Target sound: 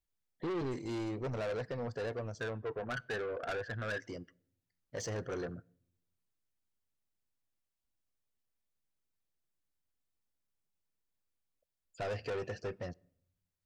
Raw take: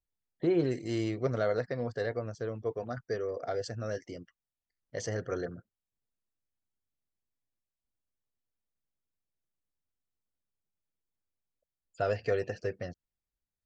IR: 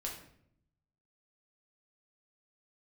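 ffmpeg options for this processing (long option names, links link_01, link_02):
-filter_complex "[0:a]asettb=1/sr,asplit=3[link_01][link_02][link_03];[link_01]atrim=end=2.404[link_04];[link_02]atrim=start=2.4:end=4,asetpts=PTS-STARTPTS,afade=type=in:duration=0.004:curve=qsin,afade=type=out:start_time=1.596:duration=0.004:curve=qsin,lowpass=frequency=1600:width_type=q:width=6.6[link_05];[link_03]atrim=start=3.996[link_06];[link_04][link_05]acrossfade=duration=0.004:curve1=hsin:curve2=qsin[link_07];[link_07][link_06]acrossfade=duration=0.004:curve1=qsin:curve2=hsin,asoftclip=type=tanh:threshold=-34dB,asplit=2[link_08][link_09];[1:a]atrim=start_sample=2205[link_10];[link_09][link_10]afir=irnorm=-1:irlink=0,volume=-21.5dB[link_11];[link_08][link_11]amix=inputs=2:normalize=0"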